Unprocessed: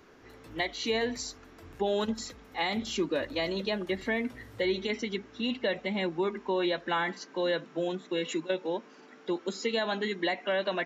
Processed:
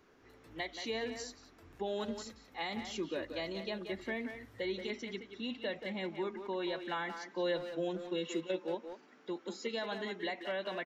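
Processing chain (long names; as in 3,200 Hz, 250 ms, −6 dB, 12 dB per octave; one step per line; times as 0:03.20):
0:07.22–0:08.75: comb filter 5.7 ms, depth 59%
far-end echo of a speakerphone 180 ms, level −7 dB
level −8.5 dB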